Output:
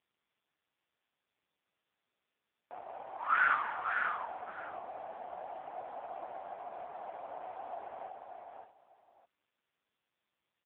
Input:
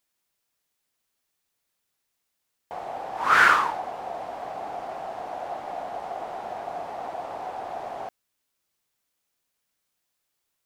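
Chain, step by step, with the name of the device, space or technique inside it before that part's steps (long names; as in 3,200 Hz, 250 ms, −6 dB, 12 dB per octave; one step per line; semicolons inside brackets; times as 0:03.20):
parametric band 250 Hz +2.5 dB 0.98 octaves
multi-tap delay 246/549 ms −14.5/−4.5 dB
0:04.84–0:06.33: dynamic equaliser 110 Hz, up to +3 dB, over −56 dBFS, Q 0.75
satellite phone (band-pass filter 330–3,200 Hz; single-tap delay 614 ms −14.5 dB; level −8.5 dB; AMR narrowband 5.15 kbit/s 8,000 Hz)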